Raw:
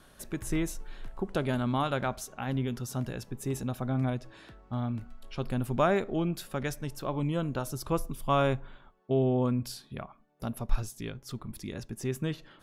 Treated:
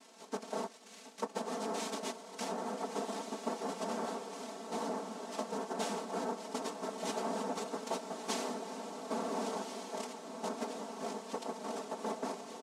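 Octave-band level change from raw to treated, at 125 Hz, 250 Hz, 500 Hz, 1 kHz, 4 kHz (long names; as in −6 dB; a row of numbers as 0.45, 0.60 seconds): −23.0, −9.5, −5.5, −3.0, −1.5 decibels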